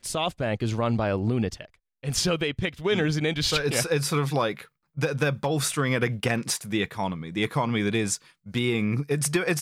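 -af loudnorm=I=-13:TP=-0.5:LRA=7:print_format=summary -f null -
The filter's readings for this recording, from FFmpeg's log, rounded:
Input Integrated:    -26.3 LUFS
Input True Peak:     -11.1 dBTP
Input LRA:             1.4 LU
Input Threshold:     -36.4 LUFS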